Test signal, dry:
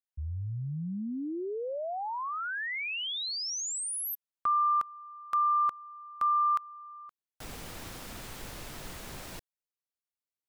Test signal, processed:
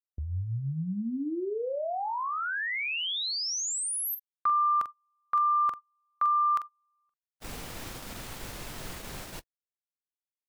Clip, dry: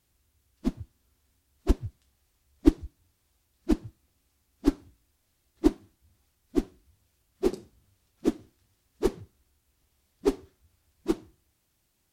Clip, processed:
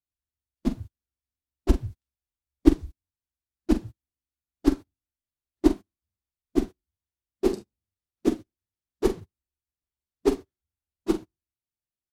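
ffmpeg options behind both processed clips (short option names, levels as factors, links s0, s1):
-filter_complex "[0:a]asplit=2[s0][s1];[s1]adelay=44,volume=0.316[s2];[s0][s2]amix=inputs=2:normalize=0,agate=range=0.0355:threshold=0.00631:ratio=16:release=133:detection=peak,volume=1.33"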